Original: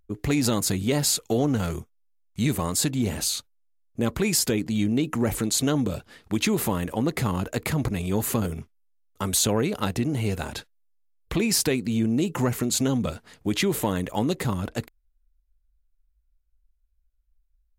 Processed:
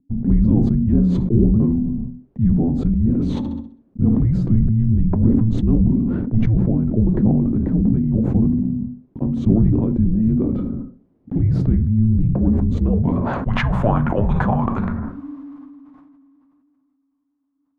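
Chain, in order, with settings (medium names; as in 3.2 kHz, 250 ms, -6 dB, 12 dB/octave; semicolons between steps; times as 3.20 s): high-pass 53 Hz 24 dB/octave; hum notches 50/100/150/200/250/300/350/400 Hz; frequency shift -330 Hz; low-pass sweep 320 Hz -> 1 kHz, 12.68–13.46 s; 3.38–4.15 s: flutter echo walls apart 11.1 m, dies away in 0.43 s; reverberation RT60 0.40 s, pre-delay 8 ms, DRR 10 dB; decay stretcher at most 22 dB/s; trim +6 dB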